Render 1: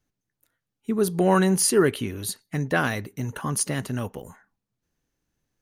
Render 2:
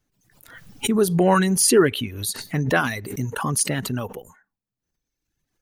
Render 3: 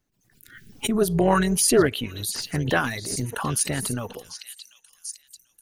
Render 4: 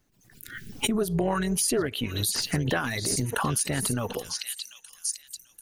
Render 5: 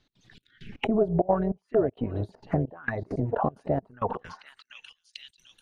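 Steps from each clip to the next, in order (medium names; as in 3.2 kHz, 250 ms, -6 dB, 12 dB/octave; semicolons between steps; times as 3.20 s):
reverb removal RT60 1.4 s; swell ahead of each attack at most 69 dB/s; trim +3.5 dB
repeats whose band climbs or falls 741 ms, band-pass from 4.1 kHz, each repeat 0.7 oct, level -4.5 dB; spectral selection erased 0.34–0.72 s, 450–1400 Hz; AM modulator 230 Hz, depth 35%
compression 6:1, threshold -30 dBFS, peak gain reduction 16.5 dB; trim +6.5 dB
trance gate "x.xxx...xx.xxxx" 198 bpm -24 dB; touch-sensitive low-pass 680–3900 Hz down, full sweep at -27 dBFS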